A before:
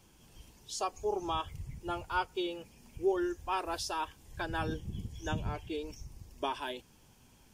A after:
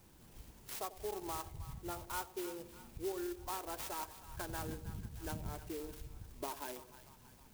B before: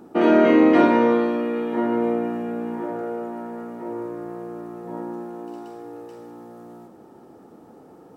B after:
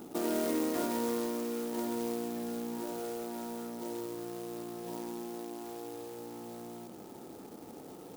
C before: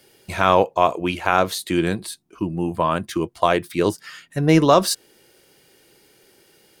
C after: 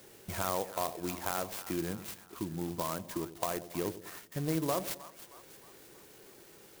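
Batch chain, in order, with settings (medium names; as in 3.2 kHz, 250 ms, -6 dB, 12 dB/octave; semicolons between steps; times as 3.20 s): compression 2:1, threshold -45 dBFS; two-band feedback delay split 800 Hz, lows 93 ms, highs 314 ms, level -13 dB; sampling jitter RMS 0.089 ms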